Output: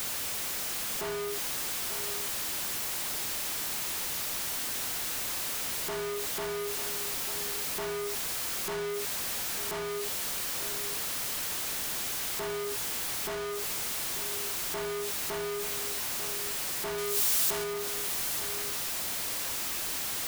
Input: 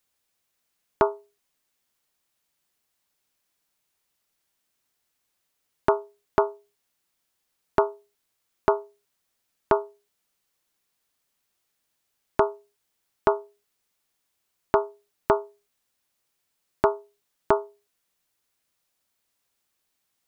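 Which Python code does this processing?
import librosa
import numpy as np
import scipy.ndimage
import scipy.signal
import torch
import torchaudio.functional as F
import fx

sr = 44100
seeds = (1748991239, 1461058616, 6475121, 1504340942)

y = np.sign(x) * np.sqrt(np.mean(np.square(x)))
y = fx.high_shelf(y, sr, hz=4000.0, db=9.5, at=(16.98, 17.64))
y = y + 10.0 ** (-10.5 / 20.0) * np.pad(y, (int(893 * sr / 1000.0), 0))[:len(y)]
y = F.gain(torch.from_numpy(y), -1.5).numpy()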